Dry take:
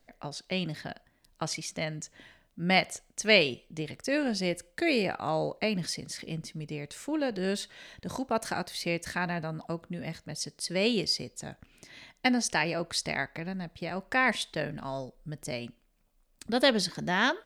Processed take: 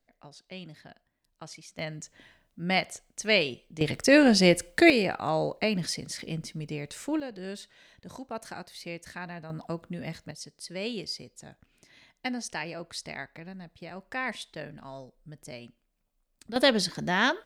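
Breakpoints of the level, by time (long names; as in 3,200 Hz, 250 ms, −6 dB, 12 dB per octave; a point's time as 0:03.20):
−11 dB
from 0:01.79 −2 dB
from 0:03.81 +10 dB
from 0:04.90 +2 dB
from 0:07.20 −8 dB
from 0:09.50 +0.5 dB
from 0:10.31 −7 dB
from 0:16.56 +1.5 dB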